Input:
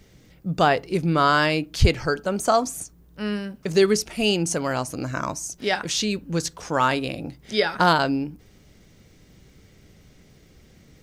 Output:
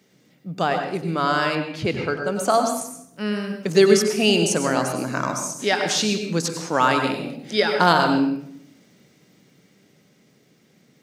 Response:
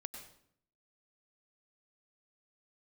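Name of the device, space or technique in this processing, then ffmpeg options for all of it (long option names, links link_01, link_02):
far laptop microphone: -filter_complex "[1:a]atrim=start_sample=2205[link_01];[0:a][link_01]afir=irnorm=-1:irlink=0,highpass=frequency=150:width=0.5412,highpass=frequency=150:width=1.3066,dynaudnorm=framelen=460:gausssize=11:maxgain=11.5dB,asettb=1/sr,asplit=3[link_02][link_03][link_04];[link_02]atrim=end=1.554[link_05];[link_03]atrim=start=1.55:end=2.27,asetpts=PTS-STARTPTS,afade=type=in:duration=0.004:curve=qsin,afade=type=out:start_time=0.716:duration=0.004:curve=qsin,bass=frequency=250:gain=1,treble=frequency=4000:gain=-11[link_06];[link_04]atrim=start=2.266[link_07];[link_05][link_06]acrossfade=duration=0.004:curve1=hsin:curve2=qsin[link_08];[link_08][link_07]acrossfade=duration=0.004:curve1=qsin:curve2=hsin"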